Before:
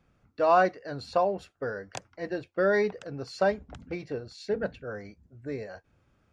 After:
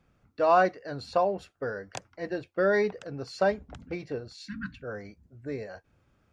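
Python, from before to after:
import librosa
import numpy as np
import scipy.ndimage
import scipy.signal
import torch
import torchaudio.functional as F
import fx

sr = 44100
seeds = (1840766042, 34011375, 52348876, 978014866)

y = fx.spec_repair(x, sr, seeds[0], start_s=4.45, length_s=0.35, low_hz=320.0, high_hz=1000.0, source='before')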